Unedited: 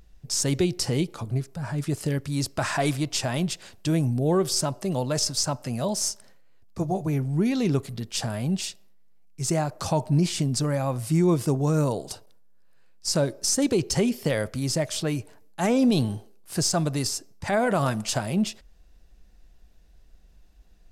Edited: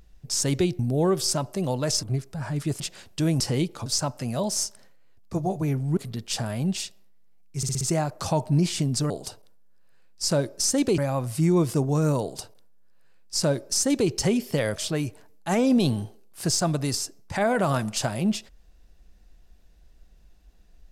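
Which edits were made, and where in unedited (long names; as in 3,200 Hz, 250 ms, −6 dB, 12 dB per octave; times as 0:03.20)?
0:00.79–0:01.25: swap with 0:04.07–0:05.31
0:02.02–0:03.47: remove
0:07.42–0:07.81: remove
0:09.41: stutter 0.06 s, 5 plays
0:11.94–0:13.82: duplicate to 0:10.70
0:14.48–0:14.88: remove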